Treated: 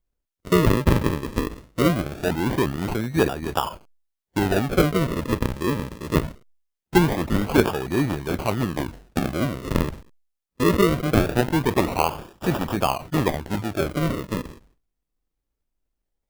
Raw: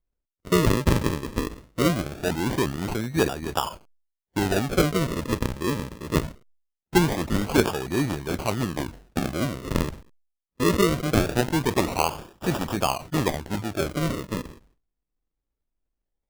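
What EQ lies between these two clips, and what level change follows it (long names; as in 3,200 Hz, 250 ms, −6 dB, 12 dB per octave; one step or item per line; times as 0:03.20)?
dynamic equaliser 6,700 Hz, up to −7 dB, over −45 dBFS, Q 0.71
+2.5 dB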